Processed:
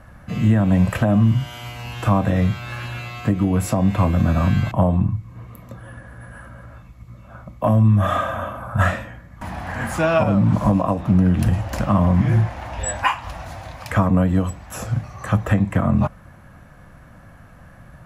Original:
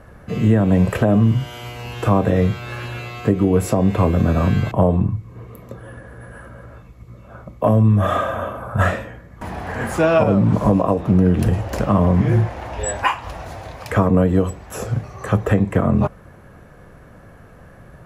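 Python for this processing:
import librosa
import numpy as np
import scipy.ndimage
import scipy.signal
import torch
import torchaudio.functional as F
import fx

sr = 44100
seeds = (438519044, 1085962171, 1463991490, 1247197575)

y = fx.peak_eq(x, sr, hz=420.0, db=-14.5, octaves=0.51)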